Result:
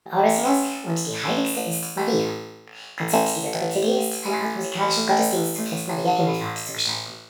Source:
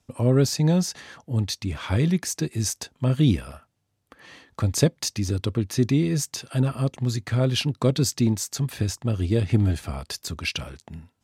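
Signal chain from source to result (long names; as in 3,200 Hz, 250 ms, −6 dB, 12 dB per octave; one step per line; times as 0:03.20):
bass and treble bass −14 dB, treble −8 dB
change of speed 1.54×
flutter between parallel walls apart 3.1 metres, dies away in 0.9 s
level +2.5 dB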